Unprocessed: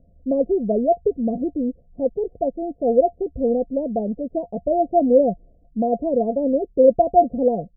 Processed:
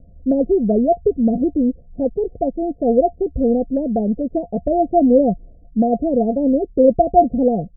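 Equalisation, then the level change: elliptic low-pass 820 Hz; dynamic EQ 550 Hz, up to -5 dB, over -29 dBFS, Q 2; low shelf 160 Hz +6.5 dB; +5.0 dB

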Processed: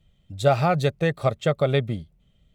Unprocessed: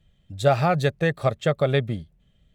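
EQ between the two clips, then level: notch 1700 Hz, Q 8.8; 0.0 dB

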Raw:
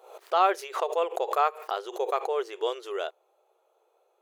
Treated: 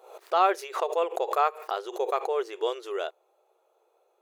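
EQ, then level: bell 260 Hz +11.5 dB 0.37 oct; notch 3100 Hz, Q 21; 0.0 dB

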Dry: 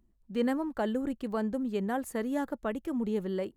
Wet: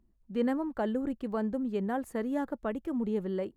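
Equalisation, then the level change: high shelf 2800 Hz -8.5 dB; 0.0 dB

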